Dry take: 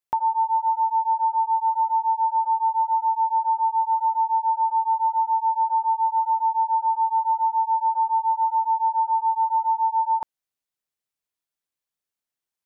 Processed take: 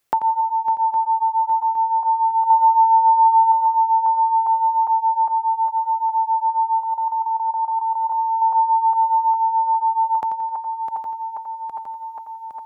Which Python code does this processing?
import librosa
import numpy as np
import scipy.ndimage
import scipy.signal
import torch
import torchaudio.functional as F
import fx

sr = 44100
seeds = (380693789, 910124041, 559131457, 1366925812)

y = fx.reverse_delay_fb(x, sr, ms=406, feedback_pct=72, wet_db=-11.0)
y = fx.notch(y, sr, hz=940.0, q=11.0)
y = fx.comb(y, sr, ms=2.2, depth=0.79, at=(2.5, 3.52))
y = fx.level_steps(y, sr, step_db=14, at=(6.81, 8.42))
y = fx.echo_feedback(y, sr, ms=87, feedback_pct=40, wet_db=-9.5)
y = fx.band_squash(y, sr, depth_pct=40)
y = y * 10.0 ** (6.0 / 20.0)